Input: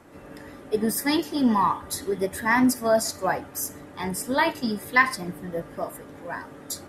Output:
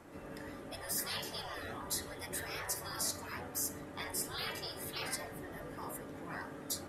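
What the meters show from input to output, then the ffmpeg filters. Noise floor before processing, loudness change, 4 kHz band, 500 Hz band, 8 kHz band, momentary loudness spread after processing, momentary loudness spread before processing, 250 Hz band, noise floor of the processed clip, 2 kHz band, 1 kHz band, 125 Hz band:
−45 dBFS, −15.0 dB, −6.5 dB, −18.0 dB, −6.0 dB, 9 LU, 15 LU, −21.5 dB, −48 dBFS, −17.0 dB, −19.5 dB, −11.0 dB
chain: -af "bandreject=frequency=123.1:width_type=h:width=4,bandreject=frequency=246.2:width_type=h:width=4,bandreject=frequency=369.3:width_type=h:width=4,bandreject=frequency=492.4:width_type=h:width=4,bandreject=frequency=615.5:width_type=h:width=4,bandreject=frequency=738.6:width_type=h:width=4,bandreject=frequency=861.7:width_type=h:width=4,bandreject=frequency=984.8:width_type=h:width=4,bandreject=frequency=1107.9:width_type=h:width=4,bandreject=frequency=1231:width_type=h:width=4,bandreject=frequency=1354.1:width_type=h:width=4,bandreject=frequency=1477.2:width_type=h:width=4,bandreject=frequency=1600.3:width_type=h:width=4,bandreject=frequency=1723.4:width_type=h:width=4,bandreject=frequency=1846.5:width_type=h:width=4,bandreject=frequency=1969.6:width_type=h:width=4,bandreject=frequency=2092.7:width_type=h:width=4,bandreject=frequency=2215.8:width_type=h:width=4,bandreject=frequency=2338.9:width_type=h:width=4,bandreject=frequency=2462:width_type=h:width=4,bandreject=frequency=2585.1:width_type=h:width=4,bandreject=frequency=2708.2:width_type=h:width=4,bandreject=frequency=2831.3:width_type=h:width=4,bandreject=frequency=2954.4:width_type=h:width=4,bandreject=frequency=3077.5:width_type=h:width=4,bandreject=frequency=3200.6:width_type=h:width=4,bandreject=frequency=3323.7:width_type=h:width=4,bandreject=frequency=3446.8:width_type=h:width=4,bandreject=frequency=3569.9:width_type=h:width=4,bandreject=frequency=3693:width_type=h:width=4,bandreject=frequency=3816.1:width_type=h:width=4,bandreject=frequency=3939.2:width_type=h:width=4,bandreject=frequency=4062.3:width_type=h:width=4,afftfilt=real='re*lt(hypot(re,im),0.0794)':imag='im*lt(hypot(re,im),0.0794)':win_size=1024:overlap=0.75,volume=-3.5dB"

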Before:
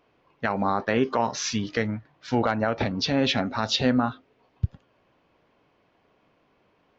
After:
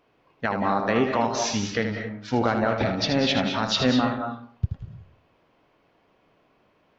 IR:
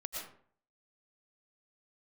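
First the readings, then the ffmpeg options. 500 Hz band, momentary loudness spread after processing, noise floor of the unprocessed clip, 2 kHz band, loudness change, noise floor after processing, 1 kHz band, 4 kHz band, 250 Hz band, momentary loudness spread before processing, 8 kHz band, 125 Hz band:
+1.5 dB, 10 LU, −66 dBFS, +1.5 dB, +1.0 dB, −65 dBFS, +1.5 dB, +1.5 dB, +1.0 dB, 10 LU, can't be measured, +1.0 dB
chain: -filter_complex "[0:a]asplit=2[link_01][link_02];[1:a]atrim=start_sample=2205,adelay=78[link_03];[link_02][link_03]afir=irnorm=-1:irlink=0,volume=-3.5dB[link_04];[link_01][link_04]amix=inputs=2:normalize=0"

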